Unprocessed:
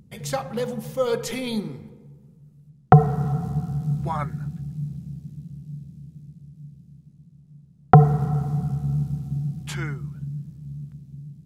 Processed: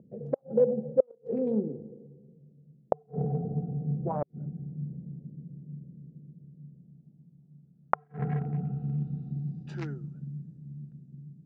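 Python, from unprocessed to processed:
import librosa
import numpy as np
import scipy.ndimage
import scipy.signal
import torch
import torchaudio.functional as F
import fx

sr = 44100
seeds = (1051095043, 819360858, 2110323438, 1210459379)

y = fx.wiener(x, sr, points=41)
y = scipy.signal.sosfilt(scipy.signal.butter(2, 200.0, 'highpass', fs=sr, output='sos'), y)
y = fx.gate_flip(y, sr, shuts_db=-16.0, range_db=-40)
y = fx.filter_sweep_lowpass(y, sr, from_hz=550.0, to_hz=7800.0, start_s=6.57, end_s=10.23, q=2.4)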